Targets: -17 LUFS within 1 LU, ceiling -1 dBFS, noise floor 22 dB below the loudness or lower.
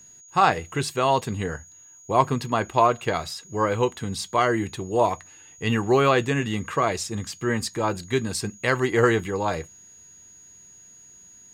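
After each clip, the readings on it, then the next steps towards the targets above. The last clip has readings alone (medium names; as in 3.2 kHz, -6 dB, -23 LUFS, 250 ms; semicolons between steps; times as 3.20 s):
steady tone 6.7 kHz; tone level -47 dBFS; loudness -24.0 LUFS; peak level -4.0 dBFS; loudness target -17.0 LUFS
-> band-stop 6.7 kHz, Q 30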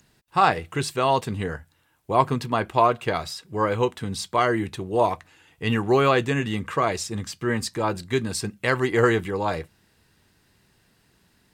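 steady tone not found; loudness -24.0 LUFS; peak level -4.0 dBFS; loudness target -17.0 LUFS
-> trim +7 dB; peak limiter -1 dBFS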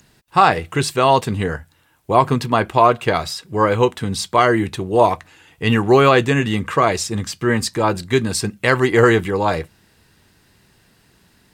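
loudness -17.5 LUFS; peak level -1.0 dBFS; noise floor -57 dBFS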